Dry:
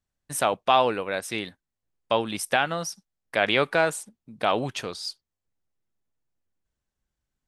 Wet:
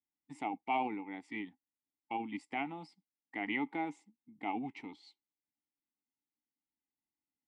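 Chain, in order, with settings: vowel filter u; formant shift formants -2 st; gain +1 dB

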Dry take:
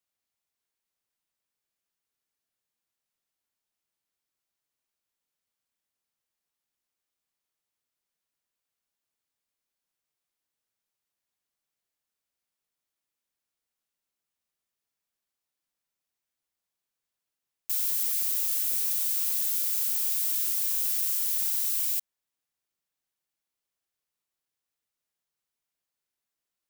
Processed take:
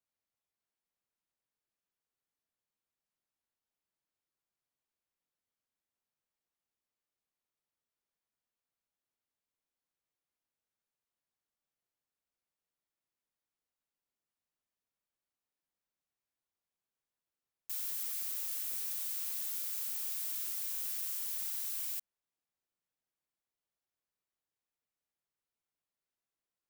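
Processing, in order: high shelf 2100 Hz -8 dB; gain -2.5 dB

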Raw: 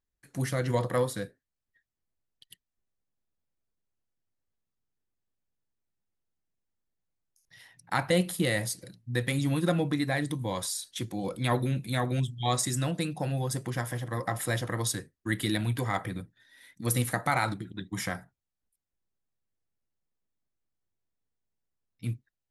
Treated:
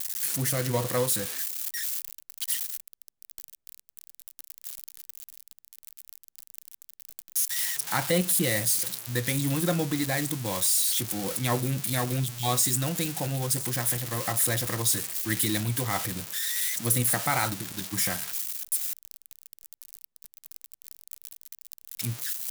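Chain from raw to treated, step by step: switching spikes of -20 dBFS

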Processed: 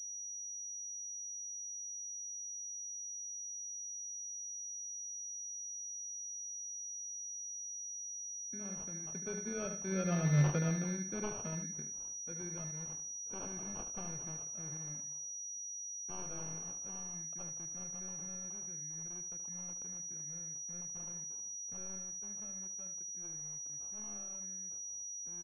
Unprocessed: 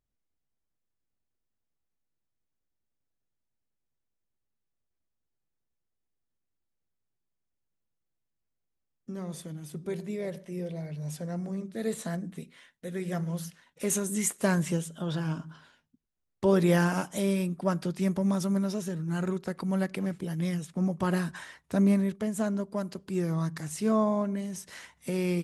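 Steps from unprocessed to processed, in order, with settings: one-sided fold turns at -27 dBFS; Doppler pass-by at 10.35, 21 m/s, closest 2.9 m; in parallel at -1 dB: compressor, threshold -59 dBFS, peak gain reduction 23 dB; on the sum: sample-and-hold 23×; on a send: echo 74 ms -9.5 dB; on the sum: pulse-width modulation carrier 5800 Hz; gain +7 dB

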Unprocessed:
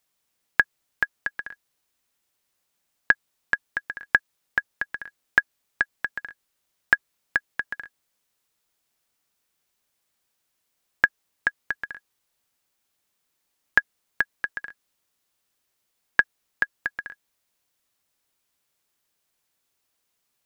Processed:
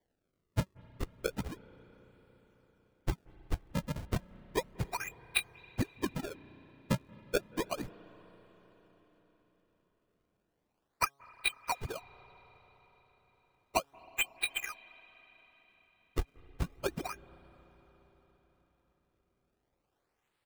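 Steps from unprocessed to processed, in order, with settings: inharmonic rescaling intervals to 120%; comb 2.5 ms, depth 95%; de-hum 138.9 Hz, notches 10; compressor 6:1, threshold -28 dBFS, peak gain reduction 14 dB; decimation with a swept rate 33×, swing 160% 0.33 Hz; on a send: reverb RT60 4.8 s, pre-delay 0.178 s, DRR 18 dB

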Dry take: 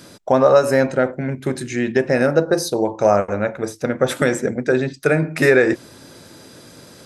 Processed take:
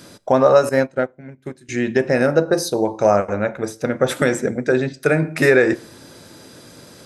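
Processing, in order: plate-style reverb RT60 0.61 s, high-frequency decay 1×, DRR 20 dB; 0.69–1.69 upward expander 2.5:1, over -27 dBFS

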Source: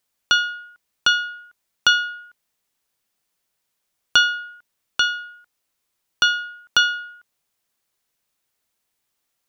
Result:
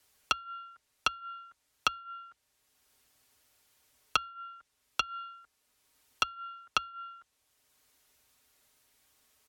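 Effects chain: treble ducked by the level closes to 620 Hz, closed at -16 dBFS; comb 6 ms, depth 62%; frequency shift -72 Hz; three-band squash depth 40%; gain -5.5 dB

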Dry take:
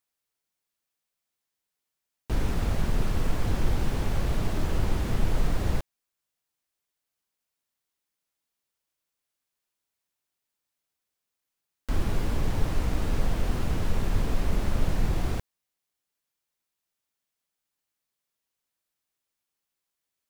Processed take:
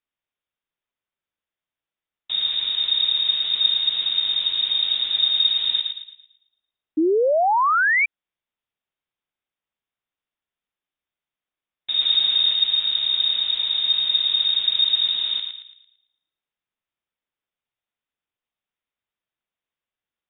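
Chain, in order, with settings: 11.97–12.53 sample leveller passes 1; inverted band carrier 3700 Hz; on a send: thinning echo 0.112 s, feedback 41%, high-pass 890 Hz, level -4.5 dB; 6.97–8.06 on the sum: painted sound rise 300–2400 Hz -16 dBFS; gain -2 dB

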